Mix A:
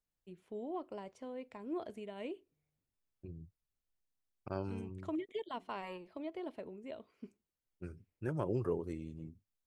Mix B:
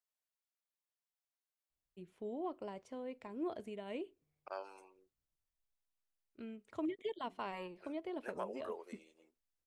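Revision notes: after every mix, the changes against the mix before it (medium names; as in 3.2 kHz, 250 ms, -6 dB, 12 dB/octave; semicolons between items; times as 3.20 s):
first voice: entry +1.70 s; second voice: add high-pass 560 Hz 24 dB/octave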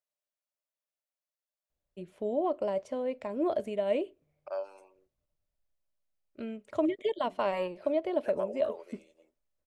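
first voice +8.5 dB; master: add peaking EQ 590 Hz +14.5 dB 0.26 oct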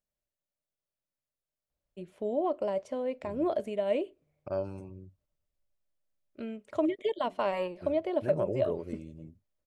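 second voice: remove high-pass 560 Hz 24 dB/octave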